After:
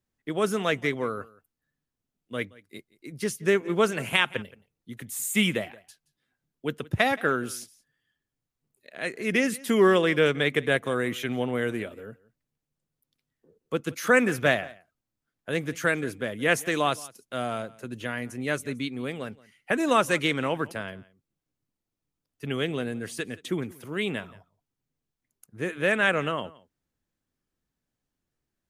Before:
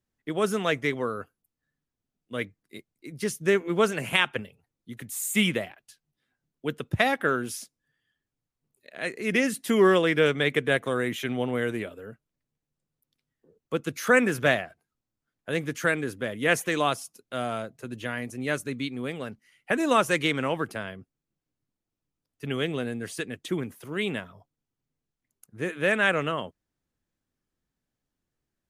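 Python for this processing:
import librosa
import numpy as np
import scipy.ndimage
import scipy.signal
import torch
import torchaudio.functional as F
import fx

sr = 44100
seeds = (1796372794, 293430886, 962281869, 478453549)

y = x + 10.0 ** (-22.0 / 20.0) * np.pad(x, (int(173 * sr / 1000.0), 0))[:len(x)]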